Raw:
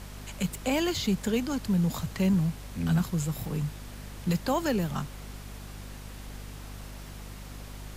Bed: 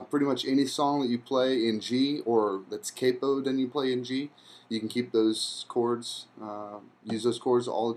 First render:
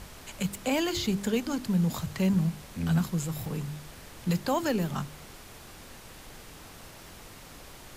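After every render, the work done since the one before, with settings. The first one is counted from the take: de-hum 50 Hz, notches 8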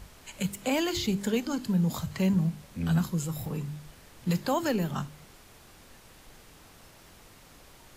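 noise print and reduce 6 dB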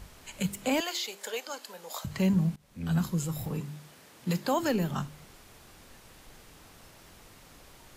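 0.80–2.05 s: Chebyshev high-pass 550 Hz, order 3; 2.56–3.07 s: fade in, from -21 dB; 3.60–4.59 s: high-pass 160 Hz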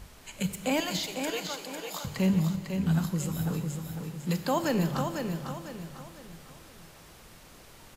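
on a send: feedback delay 500 ms, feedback 38%, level -6 dB; on the sum: Schroeder reverb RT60 2.3 s, combs from 28 ms, DRR 11 dB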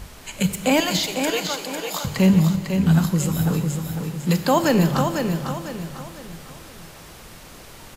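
trim +9.5 dB

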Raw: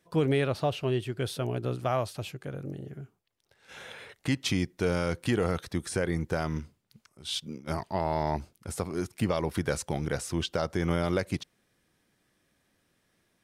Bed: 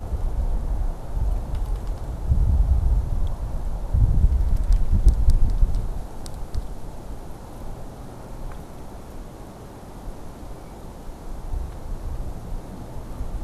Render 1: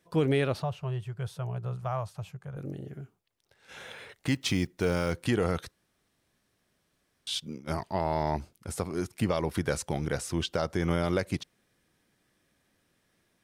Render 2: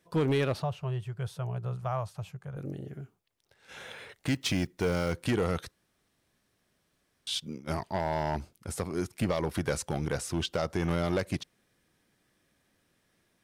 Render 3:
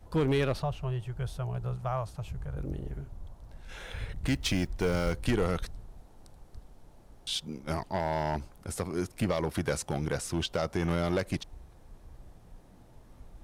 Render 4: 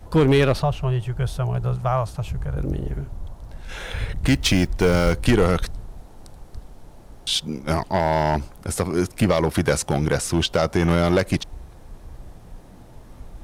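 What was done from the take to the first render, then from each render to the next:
0.62–2.57 s: FFT filter 180 Hz 0 dB, 260 Hz -27 dB, 390 Hz -12 dB, 990 Hz -1 dB, 1.6 kHz -7 dB, 2.2 kHz -10 dB, 4.2 kHz -13 dB, 6.6 kHz -8 dB, 10 kHz -11 dB; 3.81–5.16 s: block-companded coder 7-bit; 5.71–7.27 s: room tone
overload inside the chain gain 22 dB
add bed -20 dB
trim +10.5 dB

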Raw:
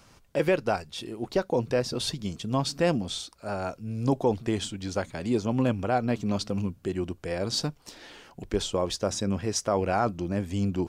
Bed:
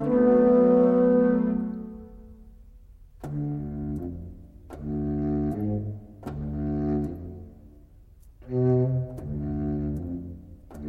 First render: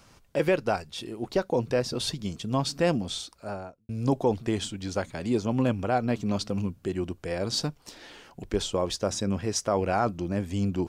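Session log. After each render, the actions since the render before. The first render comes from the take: 3.34–3.89 s: studio fade out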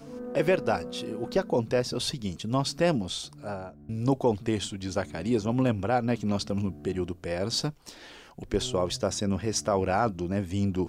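add bed -18.5 dB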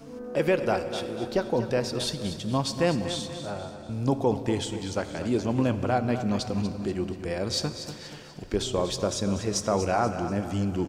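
on a send: feedback delay 241 ms, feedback 42%, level -11 dB; on the sum: plate-style reverb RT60 3 s, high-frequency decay 0.8×, DRR 11 dB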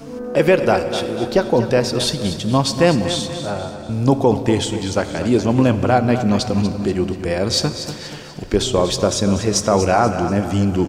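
trim +10 dB; peak limiter -3 dBFS, peak gain reduction 1.5 dB

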